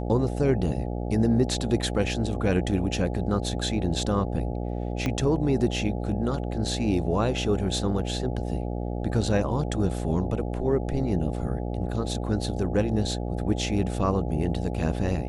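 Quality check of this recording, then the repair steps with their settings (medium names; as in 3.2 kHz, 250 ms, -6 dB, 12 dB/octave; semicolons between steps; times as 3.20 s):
buzz 60 Hz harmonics 14 -30 dBFS
5.06 s: pop -14 dBFS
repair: de-click; de-hum 60 Hz, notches 14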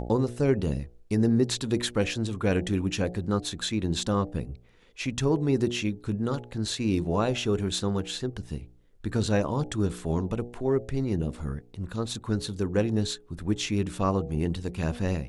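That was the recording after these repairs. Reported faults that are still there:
5.06 s: pop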